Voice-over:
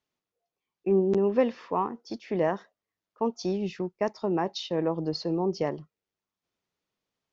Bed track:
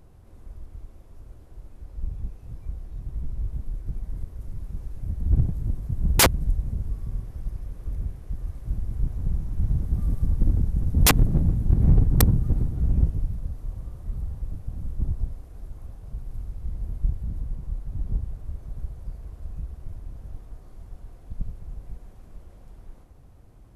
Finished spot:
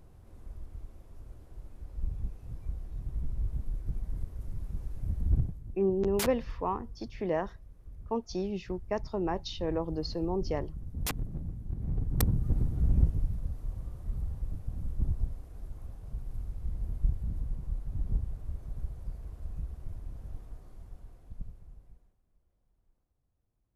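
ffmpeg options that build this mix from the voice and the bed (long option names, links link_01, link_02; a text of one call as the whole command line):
ffmpeg -i stem1.wav -i stem2.wav -filter_complex "[0:a]adelay=4900,volume=-4.5dB[link_01];[1:a]volume=10dB,afade=type=out:start_time=5.19:duration=0.41:silence=0.211349,afade=type=in:start_time=11.9:duration=0.83:silence=0.223872,afade=type=out:start_time=20.44:duration=1.74:silence=0.0595662[link_02];[link_01][link_02]amix=inputs=2:normalize=0" out.wav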